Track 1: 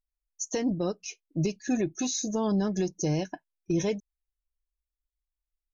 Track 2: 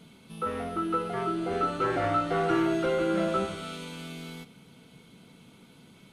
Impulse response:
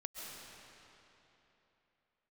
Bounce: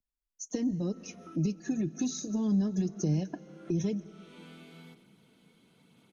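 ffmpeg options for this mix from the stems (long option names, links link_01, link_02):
-filter_complex "[0:a]equalizer=frequency=220:width_type=o:width=2:gain=12.5,acrossover=split=160|3000[link_01][link_02][link_03];[link_02]acompressor=threshold=-23dB:ratio=6[link_04];[link_01][link_04][link_03]amix=inputs=3:normalize=0,volume=-4.5dB,asplit=3[link_05][link_06][link_07];[link_06]volume=-14dB[link_08];[1:a]acompressor=threshold=-35dB:ratio=4,highpass=97,acrossover=split=3700[link_09][link_10];[link_10]acompressor=threshold=-56dB:ratio=4:attack=1:release=60[link_11];[link_09][link_11]amix=inputs=2:normalize=0,adelay=500,volume=-5.5dB[link_12];[link_07]apad=whole_len=292217[link_13];[link_12][link_13]sidechaincompress=threshold=-44dB:ratio=8:attack=7.6:release=359[link_14];[2:a]atrim=start_sample=2205[link_15];[link_08][link_15]afir=irnorm=-1:irlink=0[link_16];[link_05][link_14][link_16]amix=inputs=3:normalize=0,equalizer=frequency=1800:width=7.5:gain=2.5,acrossover=split=450|3000[link_17][link_18][link_19];[link_18]acompressor=threshold=-36dB:ratio=6[link_20];[link_17][link_20][link_19]amix=inputs=3:normalize=0,flanger=delay=0:depth=4:regen=-50:speed=1:shape=sinusoidal"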